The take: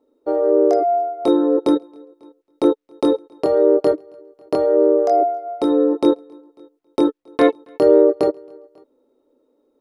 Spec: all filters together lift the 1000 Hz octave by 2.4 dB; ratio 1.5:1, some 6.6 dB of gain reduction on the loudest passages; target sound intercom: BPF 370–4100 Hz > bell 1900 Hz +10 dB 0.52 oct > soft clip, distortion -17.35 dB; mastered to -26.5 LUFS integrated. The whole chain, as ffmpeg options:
-af "equalizer=f=1k:t=o:g=4,acompressor=threshold=-26dB:ratio=1.5,highpass=370,lowpass=4.1k,equalizer=f=1.9k:t=o:w=0.52:g=10,asoftclip=threshold=-15.5dB,volume=-1dB"

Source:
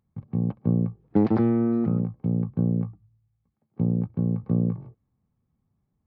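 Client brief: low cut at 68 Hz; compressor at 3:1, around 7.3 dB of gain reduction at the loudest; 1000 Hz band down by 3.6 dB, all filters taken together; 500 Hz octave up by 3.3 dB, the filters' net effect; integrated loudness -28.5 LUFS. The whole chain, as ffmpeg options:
-af "highpass=68,equalizer=f=500:t=o:g=6,equalizer=f=1k:t=o:g=-8,acompressor=threshold=-23dB:ratio=3"

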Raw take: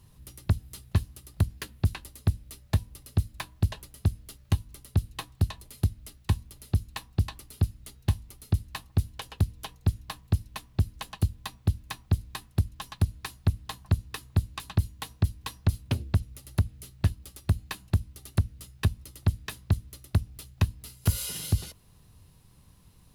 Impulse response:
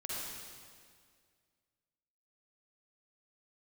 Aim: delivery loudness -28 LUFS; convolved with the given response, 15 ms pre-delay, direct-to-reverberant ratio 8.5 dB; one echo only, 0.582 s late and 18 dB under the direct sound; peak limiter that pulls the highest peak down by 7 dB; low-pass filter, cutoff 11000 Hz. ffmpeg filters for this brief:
-filter_complex "[0:a]lowpass=11k,alimiter=limit=-19dB:level=0:latency=1,aecho=1:1:582:0.126,asplit=2[a][b];[1:a]atrim=start_sample=2205,adelay=15[c];[b][c]afir=irnorm=-1:irlink=0,volume=-10.5dB[d];[a][d]amix=inputs=2:normalize=0,volume=7.5dB"

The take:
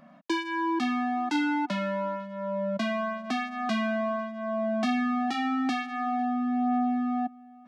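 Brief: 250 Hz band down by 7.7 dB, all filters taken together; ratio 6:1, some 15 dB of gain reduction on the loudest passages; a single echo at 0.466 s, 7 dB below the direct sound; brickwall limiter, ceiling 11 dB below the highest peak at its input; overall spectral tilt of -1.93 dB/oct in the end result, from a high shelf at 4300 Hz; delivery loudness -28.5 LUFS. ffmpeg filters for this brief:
-af "equalizer=f=250:t=o:g=-8.5,highshelf=f=4.3k:g=8,acompressor=threshold=-43dB:ratio=6,alimiter=level_in=15dB:limit=-24dB:level=0:latency=1,volume=-15dB,aecho=1:1:466:0.447,volume=16.5dB"

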